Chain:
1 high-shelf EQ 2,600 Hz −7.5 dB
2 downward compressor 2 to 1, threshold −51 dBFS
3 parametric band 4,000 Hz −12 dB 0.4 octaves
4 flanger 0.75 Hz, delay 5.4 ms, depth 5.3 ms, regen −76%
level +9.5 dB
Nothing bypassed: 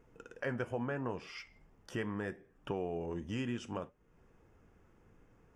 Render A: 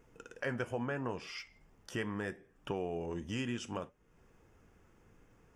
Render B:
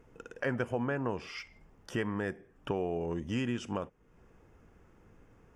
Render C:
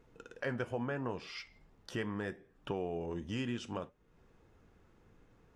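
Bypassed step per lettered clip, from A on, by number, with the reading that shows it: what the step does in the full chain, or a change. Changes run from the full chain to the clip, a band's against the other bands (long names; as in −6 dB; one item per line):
1, 8 kHz band +5.5 dB
4, change in integrated loudness +4.5 LU
3, 4 kHz band +3.5 dB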